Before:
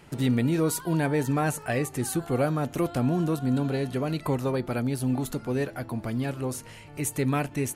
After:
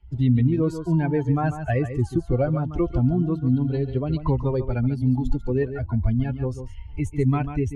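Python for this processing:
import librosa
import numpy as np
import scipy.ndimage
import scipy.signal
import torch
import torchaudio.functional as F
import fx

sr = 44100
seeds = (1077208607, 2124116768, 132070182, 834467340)

p1 = fx.bin_expand(x, sr, power=2.0)
p2 = scipy.signal.sosfilt(scipy.signal.butter(2, 6100.0, 'lowpass', fs=sr, output='sos'), p1)
p3 = fx.tilt_eq(p2, sr, slope=-3.0)
p4 = fx.rider(p3, sr, range_db=10, speed_s=0.5)
p5 = p3 + (p4 * librosa.db_to_amplitude(-2.0))
p6 = fx.low_shelf_res(p5, sr, hz=100.0, db=11.0, q=1.5)
p7 = p6 + fx.echo_single(p6, sr, ms=142, db=-11.0, dry=0)
p8 = fx.band_squash(p7, sr, depth_pct=40)
y = p8 * librosa.db_to_amplitude(-2.5)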